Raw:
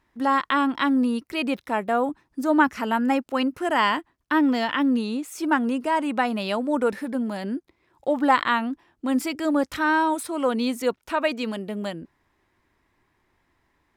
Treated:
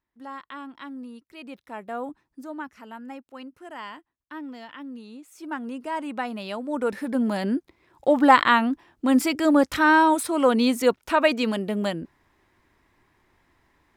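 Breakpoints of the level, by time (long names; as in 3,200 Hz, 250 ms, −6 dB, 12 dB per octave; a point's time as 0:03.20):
0:01.30 −17 dB
0:02.24 −6.5 dB
0:02.55 −17 dB
0:04.93 −17 dB
0:05.96 −6.5 dB
0:06.63 −6.5 dB
0:07.27 +4 dB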